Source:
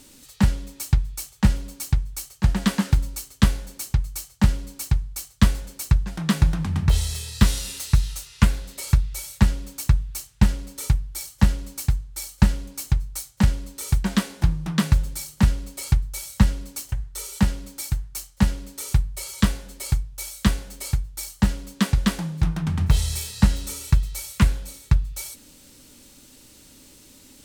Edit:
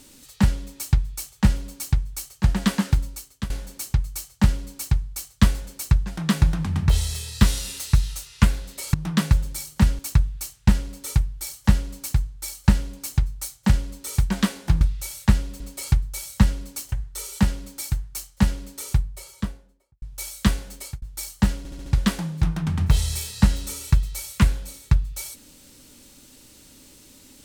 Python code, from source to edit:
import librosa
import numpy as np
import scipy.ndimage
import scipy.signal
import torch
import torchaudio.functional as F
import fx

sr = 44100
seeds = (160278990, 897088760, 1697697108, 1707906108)

y = fx.studio_fade_out(x, sr, start_s=18.66, length_s=1.36)
y = fx.edit(y, sr, fx.fade_out_to(start_s=2.67, length_s=0.83, curve='qsin', floor_db=-17.5),
    fx.swap(start_s=8.94, length_s=0.79, other_s=14.55, other_length_s=1.05),
    fx.fade_out_span(start_s=20.74, length_s=0.28),
    fx.stutter_over(start_s=21.58, slice_s=0.07, count=5), tone=tone)